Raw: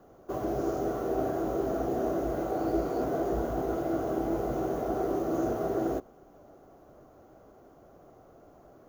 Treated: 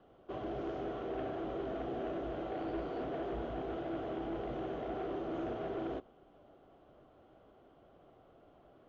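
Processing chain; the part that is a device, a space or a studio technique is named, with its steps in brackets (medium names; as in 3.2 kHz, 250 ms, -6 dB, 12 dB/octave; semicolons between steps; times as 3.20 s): overdriven synthesiser ladder filter (saturation -25 dBFS, distortion -16 dB; four-pole ladder low-pass 3.5 kHz, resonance 65%); trim +4 dB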